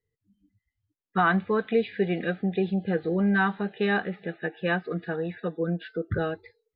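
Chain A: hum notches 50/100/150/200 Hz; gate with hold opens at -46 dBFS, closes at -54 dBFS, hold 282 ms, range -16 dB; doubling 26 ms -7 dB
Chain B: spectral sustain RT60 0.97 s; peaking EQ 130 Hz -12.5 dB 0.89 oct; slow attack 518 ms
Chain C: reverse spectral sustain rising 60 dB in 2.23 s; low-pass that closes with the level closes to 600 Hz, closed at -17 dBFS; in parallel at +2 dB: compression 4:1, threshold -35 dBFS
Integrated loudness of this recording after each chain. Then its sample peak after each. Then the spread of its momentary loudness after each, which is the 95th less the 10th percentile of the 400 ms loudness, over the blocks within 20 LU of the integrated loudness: -27.0 LUFS, -29.5 LUFS, -22.5 LUFS; -9.0 dBFS, -12.5 dBFS, -9.5 dBFS; 9 LU, 12 LU, 6 LU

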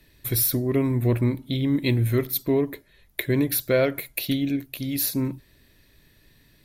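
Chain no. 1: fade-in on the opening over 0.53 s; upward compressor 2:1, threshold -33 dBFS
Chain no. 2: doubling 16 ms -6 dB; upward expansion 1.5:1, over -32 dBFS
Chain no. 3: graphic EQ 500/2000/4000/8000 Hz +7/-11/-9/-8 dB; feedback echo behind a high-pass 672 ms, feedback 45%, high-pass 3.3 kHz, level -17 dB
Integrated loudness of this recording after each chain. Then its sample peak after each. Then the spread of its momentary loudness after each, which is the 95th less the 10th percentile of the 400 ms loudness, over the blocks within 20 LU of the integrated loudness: -24.5 LUFS, -25.5 LUFS, -22.5 LUFS; -7.5 dBFS, -9.0 dBFS, -6.0 dBFS; 9 LU, 14 LU, 11 LU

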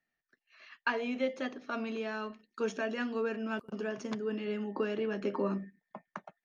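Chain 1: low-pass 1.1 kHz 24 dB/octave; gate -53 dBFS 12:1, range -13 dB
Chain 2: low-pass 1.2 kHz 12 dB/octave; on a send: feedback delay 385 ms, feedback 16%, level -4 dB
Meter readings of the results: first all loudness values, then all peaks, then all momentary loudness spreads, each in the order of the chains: -36.5 LUFS, -35.5 LUFS; -20.0 dBFS, -19.5 dBFS; 11 LU, 5 LU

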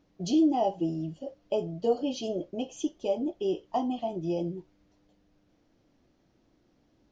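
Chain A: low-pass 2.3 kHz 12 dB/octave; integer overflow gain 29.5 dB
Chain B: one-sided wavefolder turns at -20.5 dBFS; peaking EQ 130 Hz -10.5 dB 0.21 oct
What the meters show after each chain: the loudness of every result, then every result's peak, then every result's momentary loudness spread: -35.0 LUFS, -31.0 LUFS; -29.5 dBFS, -16.0 dBFS; 5 LU, 10 LU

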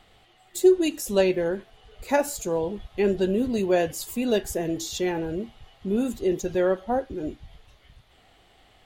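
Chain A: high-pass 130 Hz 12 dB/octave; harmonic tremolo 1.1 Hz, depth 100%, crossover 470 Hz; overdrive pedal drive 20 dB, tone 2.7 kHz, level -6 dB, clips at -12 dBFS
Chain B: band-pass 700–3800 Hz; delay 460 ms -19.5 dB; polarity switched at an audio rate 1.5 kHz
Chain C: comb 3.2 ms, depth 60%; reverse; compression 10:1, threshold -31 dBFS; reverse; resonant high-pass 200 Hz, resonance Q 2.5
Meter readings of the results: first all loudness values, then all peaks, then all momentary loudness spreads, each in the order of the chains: -25.5 LUFS, -31.0 LUFS, -32.5 LUFS; -12.5 dBFS, -14.0 dBFS, -19.0 dBFS; 10 LU, 16 LU, 6 LU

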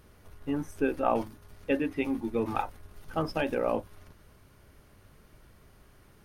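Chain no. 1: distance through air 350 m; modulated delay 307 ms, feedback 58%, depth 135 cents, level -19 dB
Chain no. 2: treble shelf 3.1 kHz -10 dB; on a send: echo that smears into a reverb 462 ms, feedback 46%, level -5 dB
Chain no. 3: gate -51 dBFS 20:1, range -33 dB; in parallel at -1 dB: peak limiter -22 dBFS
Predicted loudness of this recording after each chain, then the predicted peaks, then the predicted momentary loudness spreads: -32.5 LUFS, -31.5 LUFS, -27.5 LUFS; -13.5 dBFS, -13.0 dBFS, -10.0 dBFS; 18 LU, 15 LU, 9 LU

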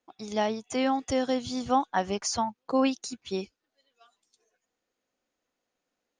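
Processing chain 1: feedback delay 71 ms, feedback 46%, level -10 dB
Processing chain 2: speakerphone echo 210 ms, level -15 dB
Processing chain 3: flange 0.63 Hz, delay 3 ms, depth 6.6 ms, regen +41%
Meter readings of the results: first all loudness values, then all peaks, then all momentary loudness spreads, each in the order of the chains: -28.5 LUFS, -29.0 LUFS, -33.5 LUFS; -13.0 dBFS, -13.5 dBFS, -16.0 dBFS; 8 LU, 9 LU, 8 LU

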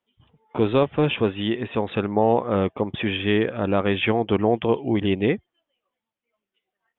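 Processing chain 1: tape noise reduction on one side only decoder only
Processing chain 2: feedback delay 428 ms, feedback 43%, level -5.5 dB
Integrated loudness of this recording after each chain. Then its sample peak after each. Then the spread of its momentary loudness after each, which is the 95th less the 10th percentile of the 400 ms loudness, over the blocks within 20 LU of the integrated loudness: -22.5 LUFS, -21.5 LUFS; -6.0 dBFS, -5.0 dBFS; 6 LU, 13 LU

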